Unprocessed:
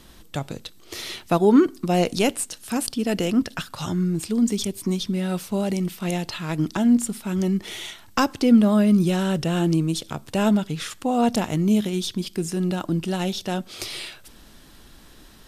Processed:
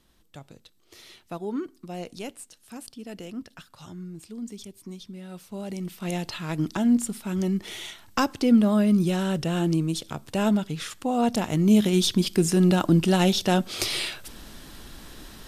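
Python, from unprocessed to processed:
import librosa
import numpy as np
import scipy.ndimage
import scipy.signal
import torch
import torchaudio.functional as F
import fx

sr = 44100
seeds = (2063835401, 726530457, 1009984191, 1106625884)

y = fx.gain(x, sr, db=fx.line((5.27, -15.5), (6.18, -3.0), (11.37, -3.0), (12.01, 5.0)))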